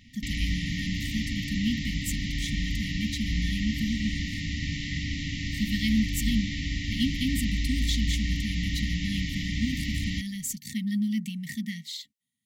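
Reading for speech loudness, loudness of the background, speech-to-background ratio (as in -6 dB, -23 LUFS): -32.0 LUFS, -31.0 LUFS, -1.0 dB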